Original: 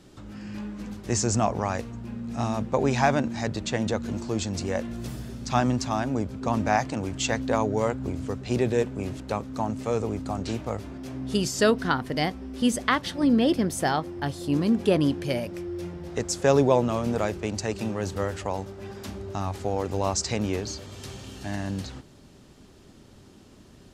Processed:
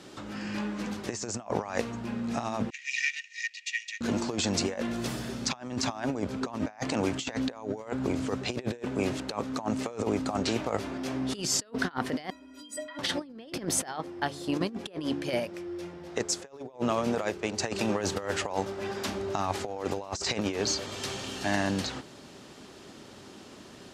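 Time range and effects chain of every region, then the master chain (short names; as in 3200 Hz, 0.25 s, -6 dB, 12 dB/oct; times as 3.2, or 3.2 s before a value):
2.7–4.01 minimum comb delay 2.1 ms + rippled Chebyshev high-pass 1800 Hz, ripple 9 dB + air absorption 110 m
12.3–12.99 negative-ratio compressor -31 dBFS + metallic resonator 290 Hz, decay 0.41 s, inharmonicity 0.03
13.85–17.6 de-hum 142.1 Hz, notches 3 + upward expander, over -34 dBFS
whole clip: HPF 450 Hz 6 dB/oct; high shelf 11000 Hz -11.5 dB; negative-ratio compressor -35 dBFS, ratio -0.5; gain +4.5 dB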